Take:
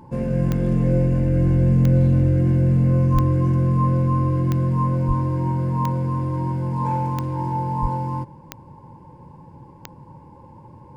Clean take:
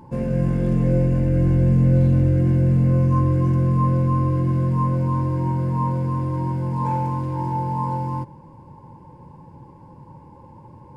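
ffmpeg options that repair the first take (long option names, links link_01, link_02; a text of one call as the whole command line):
ffmpeg -i in.wav -filter_complex "[0:a]adeclick=threshold=4,asplit=3[link_01][link_02][link_03];[link_01]afade=type=out:start_time=3.13:duration=0.02[link_04];[link_02]highpass=frequency=140:width=0.5412,highpass=frequency=140:width=1.3066,afade=type=in:start_time=3.13:duration=0.02,afade=type=out:start_time=3.25:duration=0.02[link_05];[link_03]afade=type=in:start_time=3.25:duration=0.02[link_06];[link_04][link_05][link_06]amix=inputs=3:normalize=0,asplit=3[link_07][link_08][link_09];[link_07]afade=type=out:start_time=5.07:duration=0.02[link_10];[link_08]highpass=frequency=140:width=0.5412,highpass=frequency=140:width=1.3066,afade=type=in:start_time=5.07:duration=0.02,afade=type=out:start_time=5.19:duration=0.02[link_11];[link_09]afade=type=in:start_time=5.19:duration=0.02[link_12];[link_10][link_11][link_12]amix=inputs=3:normalize=0,asplit=3[link_13][link_14][link_15];[link_13]afade=type=out:start_time=7.81:duration=0.02[link_16];[link_14]highpass=frequency=140:width=0.5412,highpass=frequency=140:width=1.3066,afade=type=in:start_time=7.81:duration=0.02,afade=type=out:start_time=7.93:duration=0.02[link_17];[link_15]afade=type=in:start_time=7.93:duration=0.02[link_18];[link_16][link_17][link_18]amix=inputs=3:normalize=0" out.wav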